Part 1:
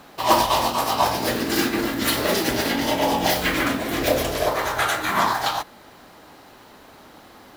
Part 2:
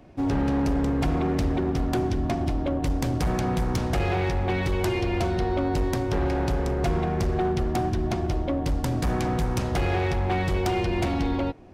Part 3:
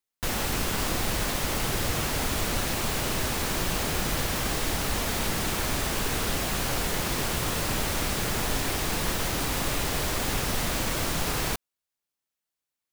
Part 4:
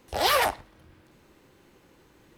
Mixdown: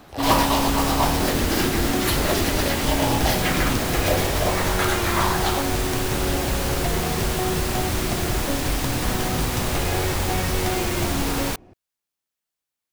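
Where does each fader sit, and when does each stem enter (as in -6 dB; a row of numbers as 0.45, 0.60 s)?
-3.0, -1.0, +1.5, -5.5 dB; 0.00, 0.00, 0.00, 0.00 s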